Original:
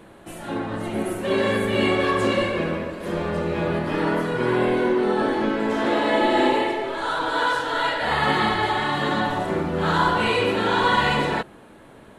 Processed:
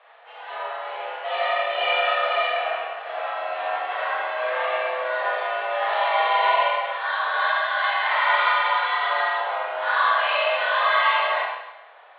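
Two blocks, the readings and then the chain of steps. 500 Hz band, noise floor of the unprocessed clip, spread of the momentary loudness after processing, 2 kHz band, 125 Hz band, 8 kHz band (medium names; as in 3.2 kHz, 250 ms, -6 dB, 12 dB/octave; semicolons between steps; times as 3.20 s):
-4.0 dB, -47 dBFS, 12 LU, +2.5 dB, under -40 dB, under -35 dB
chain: mistuned SSB +140 Hz 510–3400 Hz; Schroeder reverb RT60 0.95 s, combs from 26 ms, DRR -4 dB; trim -3.5 dB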